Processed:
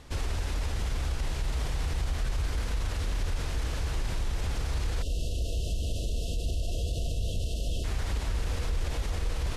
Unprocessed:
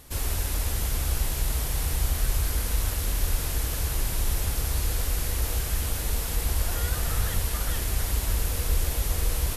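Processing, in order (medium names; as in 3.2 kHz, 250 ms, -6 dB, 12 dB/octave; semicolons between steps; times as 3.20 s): spectral selection erased 5.02–7.84 s, 730–2600 Hz; peak limiter -22.5 dBFS, peak gain reduction 9.5 dB; distance through air 100 m; trim +2 dB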